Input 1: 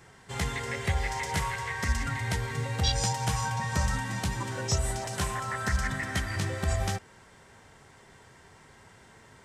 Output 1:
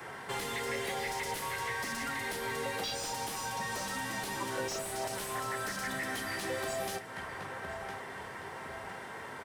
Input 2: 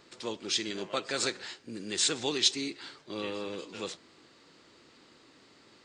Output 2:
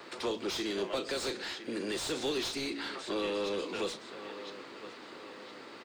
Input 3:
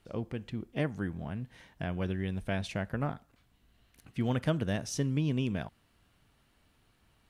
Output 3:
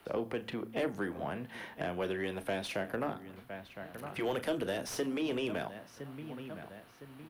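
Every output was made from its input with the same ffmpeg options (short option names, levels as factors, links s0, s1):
-filter_complex "[0:a]asplit=2[s0][s1];[s1]adelay=1010,lowpass=f=4800:p=1,volume=0.0944,asplit=2[s2][s3];[s3]adelay=1010,lowpass=f=4800:p=1,volume=0.46,asplit=2[s4][s5];[s5]adelay=1010,lowpass=f=4800:p=1,volume=0.46[s6];[s0][s2][s4][s6]amix=inputs=4:normalize=0,acrossover=split=140|420|3300[s7][s8][s9][s10];[s9]acompressor=threshold=0.00447:ratio=6[s11];[s7][s8][s11][s10]amix=inputs=4:normalize=0,asplit=2[s12][s13];[s13]adelay=35,volume=0.2[s14];[s12][s14]amix=inputs=2:normalize=0,afftfilt=real='re*lt(hypot(re,im),0.251)':imag='im*lt(hypot(re,im),0.251)':win_size=1024:overlap=0.75,aexciter=amount=6.1:drive=3.5:freq=9800,bandreject=f=56.02:t=h:w=4,bandreject=f=112.04:t=h:w=4,bandreject=f=168.06:t=h:w=4,bandreject=f=224.08:t=h:w=4,bandreject=f=280.1:t=h:w=4,acrossover=split=340|3000[s15][s16][s17];[s15]acompressor=threshold=0.00447:ratio=6[s18];[s18][s16][s17]amix=inputs=3:normalize=0,asplit=2[s19][s20];[s20]highpass=f=720:p=1,volume=25.1,asoftclip=type=tanh:threshold=0.2[s21];[s19][s21]amix=inputs=2:normalize=0,lowpass=f=1200:p=1,volume=0.501,volume=0.562"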